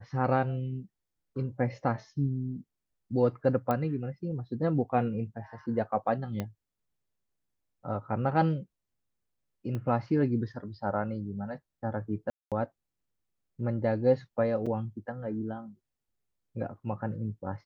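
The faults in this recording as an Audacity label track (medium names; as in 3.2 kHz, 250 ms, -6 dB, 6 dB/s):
3.710000	3.710000	pop -17 dBFS
6.400000	6.400000	pop -19 dBFS
9.750000	9.750000	pop -24 dBFS
12.300000	12.520000	dropout 217 ms
14.660000	14.670000	dropout 5.3 ms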